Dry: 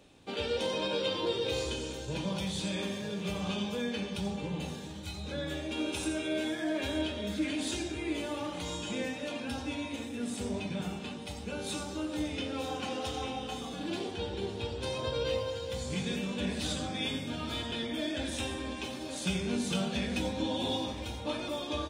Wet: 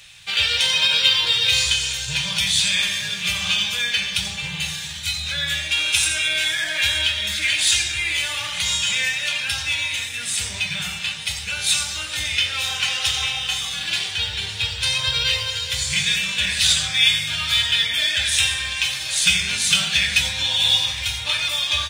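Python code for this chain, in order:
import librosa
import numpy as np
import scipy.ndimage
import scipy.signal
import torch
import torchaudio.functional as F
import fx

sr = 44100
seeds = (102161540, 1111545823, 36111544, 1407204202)

p1 = fx.curve_eq(x, sr, hz=(150.0, 260.0, 1100.0, 1900.0), db=(0, -26, 0, 14))
p2 = fx.quant_float(p1, sr, bits=2)
p3 = p1 + (p2 * 10.0 ** (-9.0 / 20.0))
y = p3 * 10.0 ** (4.0 / 20.0)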